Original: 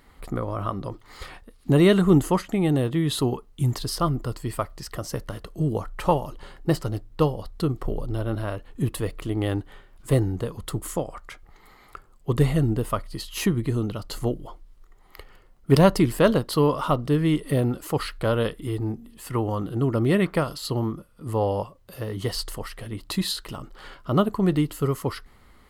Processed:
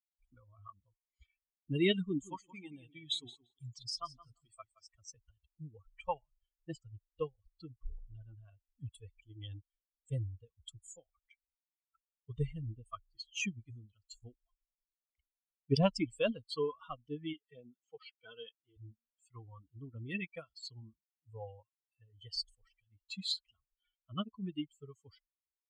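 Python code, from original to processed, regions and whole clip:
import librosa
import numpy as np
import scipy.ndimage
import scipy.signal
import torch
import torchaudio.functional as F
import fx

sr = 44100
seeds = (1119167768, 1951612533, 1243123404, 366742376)

y = fx.chain(x, sr, fx.low_shelf(hz=400.0, db=-3.5),
    fx.echo_feedback(ms=171, feedback_pct=40, wet_db=-6), at=(2.04, 4.95))
y = fx.chain(y, sr, fx.law_mismatch(coded='A'),
    fx.high_shelf(hz=11000.0, db=11.5), at=(13.59, 14.44))
y = fx.chain(y, sr, fx.bandpass_edges(low_hz=170.0, high_hz=5700.0),
    fx.notch_comb(f0_hz=280.0), at=(17.33, 18.77))
y = fx.bin_expand(y, sr, power=3.0)
y = scipy.signal.sosfilt(scipy.signal.butter(6, 7400.0, 'lowpass', fs=sr, output='sos'), y)
y = fx.high_shelf_res(y, sr, hz=2000.0, db=6.0, q=3.0)
y = y * 10.0 ** (-8.5 / 20.0)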